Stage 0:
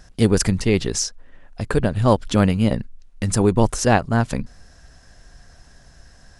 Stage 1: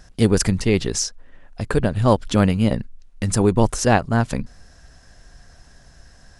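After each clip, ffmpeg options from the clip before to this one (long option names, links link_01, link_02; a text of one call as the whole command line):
ffmpeg -i in.wav -af anull out.wav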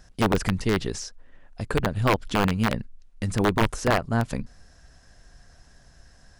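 ffmpeg -i in.wav -filter_complex "[0:a]aeval=exprs='(mod(2.11*val(0)+1,2)-1)/2.11':channel_layout=same,acrossover=split=3500[link_01][link_02];[link_02]acompressor=threshold=-29dB:ratio=4:attack=1:release=60[link_03];[link_01][link_03]amix=inputs=2:normalize=0,volume=-5dB" out.wav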